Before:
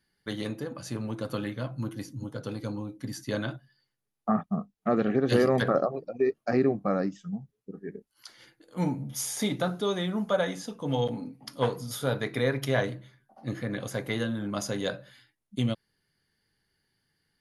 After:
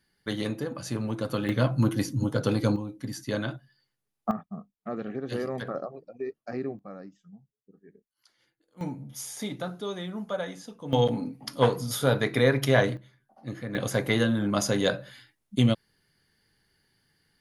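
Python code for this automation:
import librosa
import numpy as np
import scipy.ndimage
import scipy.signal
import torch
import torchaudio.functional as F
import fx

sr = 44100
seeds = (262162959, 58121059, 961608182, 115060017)

y = fx.gain(x, sr, db=fx.steps((0.0, 3.0), (1.49, 10.0), (2.76, 1.0), (4.31, -9.0), (6.79, -15.5), (8.81, -5.5), (10.93, 5.0), (12.97, -3.0), (13.75, 6.0)))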